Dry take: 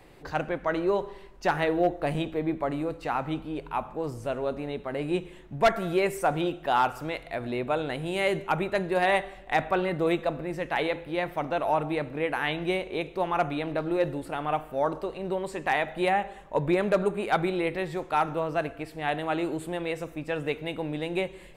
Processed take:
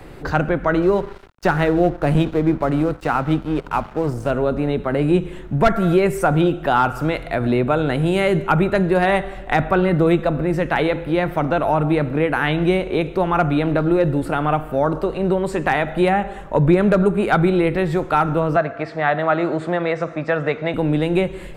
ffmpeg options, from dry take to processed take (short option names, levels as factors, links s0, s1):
-filter_complex "[0:a]asettb=1/sr,asplit=3[s0][s1][s2];[s0]atrim=end=0.824[s3];[s1]atrim=start=0.82:end=4.31,asetpts=PTS-STARTPTS,afade=t=in:d=0.004:c=qsin,afade=t=out:st=3.486:d=0.004:c=qsin,aeval=exprs='sgn(val(0))*max(abs(val(0))-0.00596,0)':c=same[s4];[s2]atrim=start=4.306[s5];[s3][s4]acrossfade=d=0.004:c1=hsin:c2=qsin[s6];[s6][s5]acrossfade=d=0.004:c1=qsin:c2=hsin,asettb=1/sr,asplit=3[s7][s8][s9];[s7]atrim=end=18.564[s10];[s8]atrim=start=18.56:end=20.74,asetpts=PTS-STARTPTS,afade=t=in:d=0.004:c=qsin,afade=t=out:st=2.176:d=0.004:c=qsin,highpass=180,equalizer=f=290:t=q:w=4:g=-7,equalizer=f=420:t=q:w=4:g=-3,equalizer=f=630:t=q:w=4:g=7,equalizer=f=1200:t=q:w=4:g=6,equalizer=f=1900:t=q:w=4:g=6,equalizer=f=2900:t=q:w=4:g=-6,lowpass=f=6000:w=0.5412,lowpass=f=6000:w=1.3066[s11];[s9]atrim=start=20.736[s12];[s10][s11]acrossfade=d=0.004:c1=hsin:c2=qsin[s13];[s13][s12]acrossfade=d=0.004:c1=qsin:c2=hsin,lowshelf=f=490:g=8,acrossover=split=240[s14][s15];[s15]acompressor=threshold=0.0355:ratio=2[s16];[s14][s16]amix=inputs=2:normalize=0,equalizer=f=1400:w=3.5:g=7,volume=2.82"